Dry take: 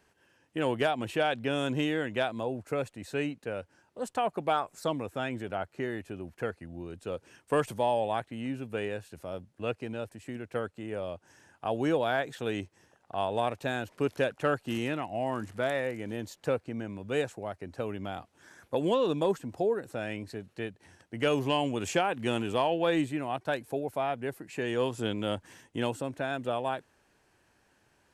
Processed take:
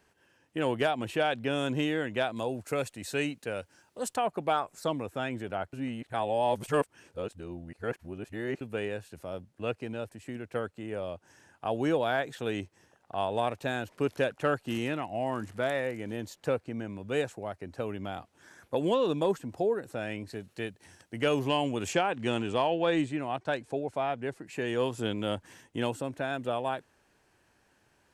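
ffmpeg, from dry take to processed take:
ffmpeg -i in.wav -filter_complex "[0:a]asettb=1/sr,asplit=3[link_01][link_02][link_03];[link_01]atrim=end=2.364[link_04];[link_02]atrim=start=2.36:end=4.16,asetpts=PTS-STARTPTS,afade=type=in:duration=0.004:curve=qsin,afade=type=out:start_time=1.796:duration=0.004:curve=qsin,highshelf=frequency=2800:gain=10[link_05];[link_03]atrim=start=4.156[link_06];[link_04][link_05]acrossfade=duration=0.004:curve1=hsin:curve2=qsin[link_07];[link_07][link_06]acrossfade=duration=0.004:curve1=qsin:curve2=hsin,asettb=1/sr,asplit=3[link_08][link_09][link_10];[link_08]atrim=end=20.334[link_11];[link_09]atrim=start=20.33:end=21.19,asetpts=PTS-STARTPTS,afade=type=in:duration=0.004:curve=qsin,afade=type=out:start_time=0.856:duration=0.004:curve=qsin,highshelf=frequency=3900:gain=8[link_12];[link_10]atrim=start=21.186[link_13];[link_11][link_12]acrossfade=duration=0.004:curve1=hsin:curve2=qsin[link_14];[link_14][link_13]acrossfade=duration=0.004:curve1=qsin:curve2=hsin,asettb=1/sr,asplit=3[link_15][link_16][link_17];[link_15]atrim=end=21.934[link_18];[link_16]atrim=start=21.93:end=24.46,asetpts=PTS-STARTPTS,afade=type=in:duration=0.004:curve=qsin,afade=type=out:start_time=2.526:duration=0.004:curve=qsin,lowpass=frequency=8600:width=0.5412,lowpass=frequency=8600:width=1.3066[link_19];[link_17]atrim=start=24.456[link_20];[link_18][link_19]acrossfade=duration=0.004:curve1=hsin:curve2=qsin[link_21];[link_21][link_20]acrossfade=duration=0.004:curve1=qsin:curve2=hsin,asplit=3[link_22][link_23][link_24];[link_22]atrim=end=5.732[link_25];[link_23]atrim=start=5.728:end=8.612,asetpts=PTS-STARTPTS,areverse[link_26];[link_24]atrim=start=8.608[link_27];[link_25][link_26]acrossfade=duration=0.004:curve1=hsin:curve2=hsin[link_28];[link_28][link_27]acrossfade=duration=0.004:curve1=hsin:curve2=hsin" out.wav

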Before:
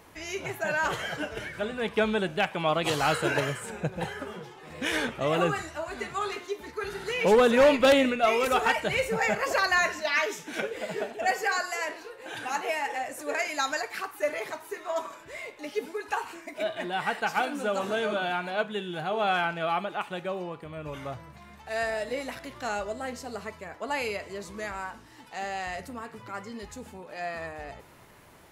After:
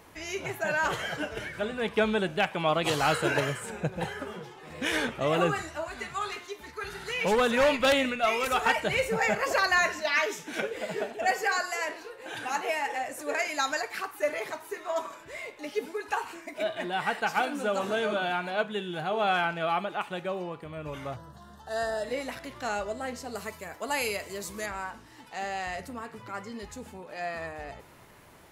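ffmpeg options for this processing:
ffmpeg -i in.wav -filter_complex "[0:a]asettb=1/sr,asplit=3[link_01][link_02][link_03];[link_01]atrim=end=5.884[link_04];[link_02]atrim=start=5.88:end=8.66,asetpts=PTS-STARTPTS,afade=type=in:duration=0.004:curve=qsin,afade=type=out:start_time=2.776:duration=0.004:curve=qsin,equalizer=frequency=370:width=0.82:gain=-7[link_05];[link_03]atrim=start=8.656[link_06];[link_04][link_05]acrossfade=duration=0.004:curve1=hsin:curve2=qsin[link_07];[link_07][link_06]acrossfade=duration=0.004:curve1=qsin:curve2=hsin,asettb=1/sr,asplit=3[link_08][link_09][link_10];[link_08]atrim=end=21.164[link_11];[link_09]atrim=start=21.16:end=22.04,asetpts=PTS-STARTPTS,afade=type=in:duration=0.004:curve=qsin,afade=type=out:start_time=0.876:duration=0.004:curve=qsin,asuperstop=centerf=2300:order=4:qfactor=1.7[link_12];[link_10]atrim=start=22.036[link_13];[link_11][link_12]acrossfade=duration=0.004:curve1=hsin:curve2=qsin[link_14];[link_14][link_13]acrossfade=duration=0.004:curve1=qsin:curve2=hsin,asettb=1/sr,asplit=3[link_15][link_16][link_17];[link_15]atrim=end=23.354[link_18];[link_16]atrim=start=23.35:end=24.66,asetpts=PTS-STARTPTS,afade=type=in:duration=0.004:curve=qsin,afade=type=out:start_time=1.306:duration=0.004:curve=qsin,aemphasis=mode=production:type=50fm[link_19];[link_17]atrim=start=24.656[link_20];[link_18][link_19]acrossfade=duration=0.004:curve1=hsin:curve2=qsin[link_21];[link_21][link_20]acrossfade=duration=0.004:curve1=qsin:curve2=hsin" out.wav

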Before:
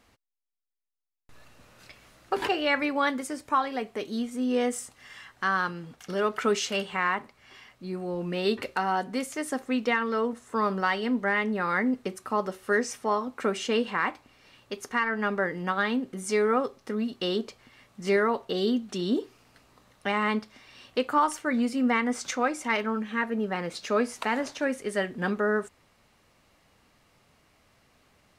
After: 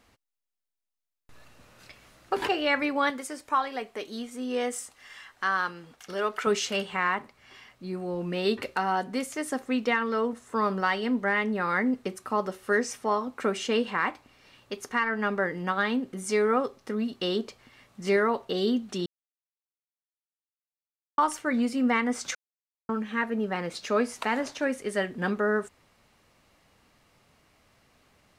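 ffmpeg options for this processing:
ffmpeg -i in.wav -filter_complex "[0:a]asettb=1/sr,asplit=3[link_01][link_02][link_03];[link_01]atrim=end=3.104[link_04];[link_02]atrim=start=3.1:end=6.47,asetpts=PTS-STARTPTS,afade=type=in:duration=0.004:curve=qsin,afade=type=out:start_time=3.366:duration=0.004:curve=qsin,equalizer=frequency=120:width_type=o:width=2.6:gain=-10[link_05];[link_03]atrim=start=6.466[link_06];[link_04][link_05]acrossfade=duration=0.004:curve1=hsin:curve2=qsin[link_07];[link_07][link_06]acrossfade=duration=0.004:curve1=qsin:curve2=hsin,asplit=5[link_08][link_09][link_10][link_11][link_12];[link_08]atrim=end=19.06,asetpts=PTS-STARTPTS,afade=type=out:start_time=19.056:duration=0.004:curve=hsin[link_13];[link_09]atrim=start=19.06:end=21.18,asetpts=PTS-STARTPTS,volume=0[link_14];[link_10]atrim=start=21.18:end=22.35,asetpts=PTS-STARTPTS,afade=type=in:duration=0.004:curve=hsin,afade=type=out:start_time=1.166:duration=0.004:curve=hsin[link_15];[link_11]atrim=start=22.35:end=22.89,asetpts=PTS-STARTPTS,volume=0[link_16];[link_12]atrim=start=22.89,asetpts=PTS-STARTPTS,afade=type=in:duration=0.004:curve=hsin[link_17];[link_13][link_14][link_15][link_16][link_17]concat=n=5:v=0:a=1" out.wav

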